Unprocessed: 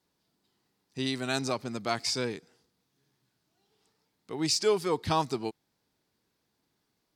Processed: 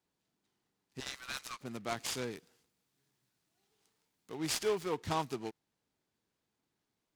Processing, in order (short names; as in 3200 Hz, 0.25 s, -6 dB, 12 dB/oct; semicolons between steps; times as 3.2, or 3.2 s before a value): 1–1.61 elliptic high-pass 1100 Hz; 2.32–4.38 high shelf 5600 Hz +10.5 dB; noise-modulated delay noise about 1800 Hz, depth 0.038 ms; gain -7 dB